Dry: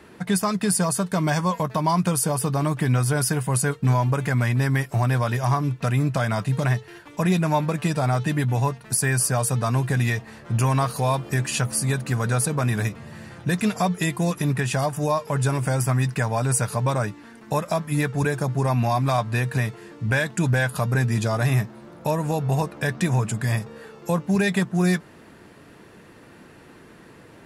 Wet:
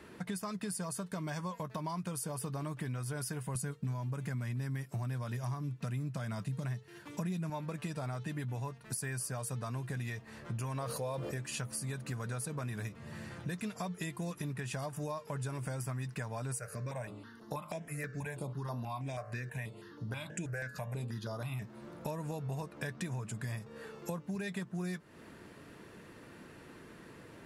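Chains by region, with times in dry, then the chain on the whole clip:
3.55–7.5 HPF 140 Hz + tone controls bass +10 dB, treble +4 dB
10.76–11.38 bell 520 Hz +11 dB 0.51 oct + sustainer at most 39 dB/s
16.59–21.62 tone controls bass -4 dB, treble -1 dB + de-hum 52.62 Hz, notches 33 + step phaser 6.2 Hz 940–7900 Hz
whole clip: bell 770 Hz -4 dB 0.25 oct; compressor 4:1, threshold -33 dBFS; gain -5 dB

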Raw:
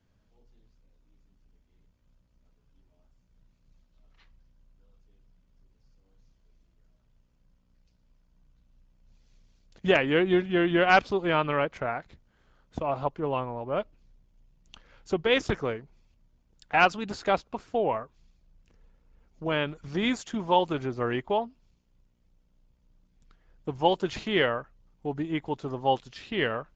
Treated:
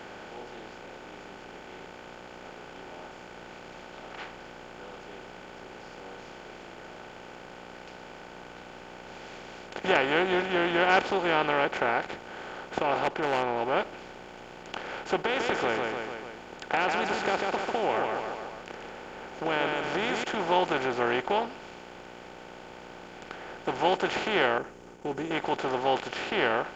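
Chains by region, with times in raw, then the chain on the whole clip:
12.99–13.56 LPF 5100 Hz + overloaded stage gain 25 dB
15.23–20.24 compressor 5:1, threshold -27 dBFS + feedback echo 0.146 s, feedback 34%, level -7.5 dB
24.58–25.31 expander -59 dBFS + EQ curve 430 Hz 0 dB, 630 Hz -17 dB, 4200 Hz -20 dB, 6400 Hz 0 dB
whole clip: per-bin compression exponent 0.4; low shelf 220 Hz -9.5 dB; gain -5 dB

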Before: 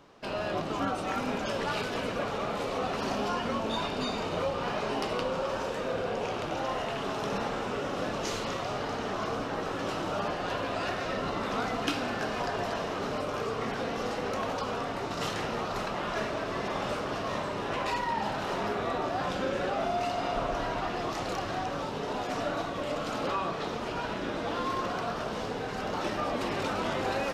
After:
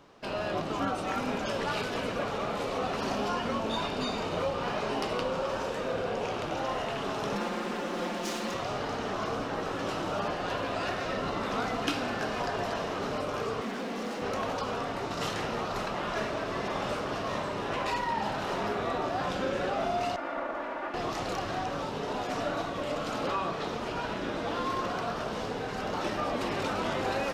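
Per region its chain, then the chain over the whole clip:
7.35–8.54 minimum comb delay 5.7 ms + resonant low shelf 160 Hz -10.5 dB, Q 3
13.61–14.22 overloaded stage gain 34.5 dB + resonant low shelf 150 Hz -10.5 dB, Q 3
20.16–20.94 minimum comb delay 3.4 ms + three-band isolator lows -21 dB, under 250 Hz, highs -18 dB, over 2200 Hz
whole clip: dry

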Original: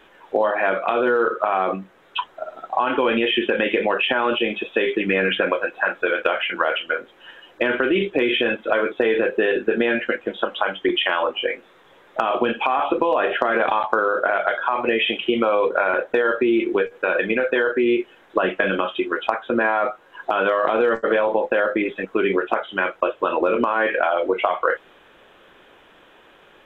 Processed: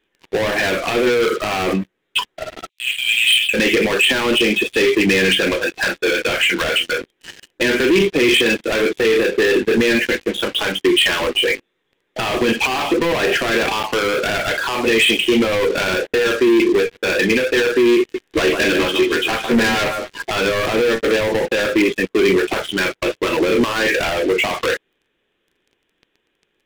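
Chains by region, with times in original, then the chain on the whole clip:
2.69–3.54 steep high-pass 2400 Hz 48 dB/oct + sample leveller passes 1
17.99–20.28 doubler 13 ms -2 dB + echo 0.152 s -10.5 dB
whole clip: sample leveller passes 5; band shelf 900 Hz -9 dB; gain -6 dB

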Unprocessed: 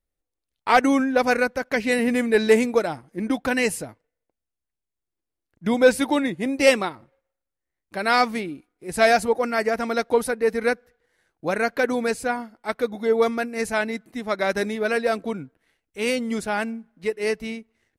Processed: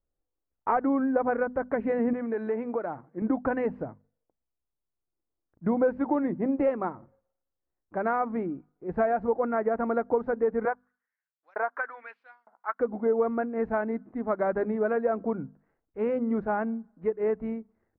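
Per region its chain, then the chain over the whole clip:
2.13–3.22 tilt +2 dB/oct + compressor 2.5:1, threshold -28 dBFS + HPF 55 Hz
10.65–12.8 G.711 law mismatch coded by A + LFO high-pass saw up 1.1 Hz 730–6200 Hz
whole clip: notches 50/100/150/200/250 Hz; compressor 6:1, threshold -21 dBFS; LPF 1300 Hz 24 dB/oct

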